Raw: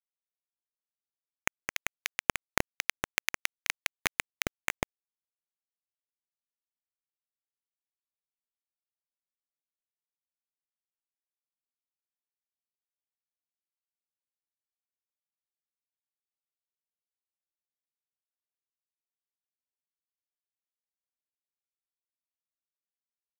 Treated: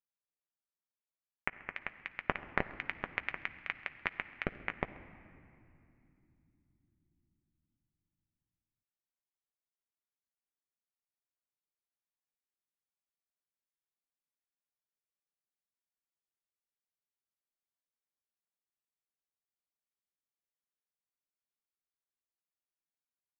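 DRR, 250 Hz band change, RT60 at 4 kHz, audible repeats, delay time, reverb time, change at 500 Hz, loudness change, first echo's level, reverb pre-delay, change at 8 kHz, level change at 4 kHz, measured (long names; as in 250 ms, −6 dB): 9.0 dB, −3.5 dB, 1.7 s, 1, 133 ms, 2.8 s, −3.5 dB, −6.0 dB, −23.0 dB, 5 ms, below −35 dB, −14.0 dB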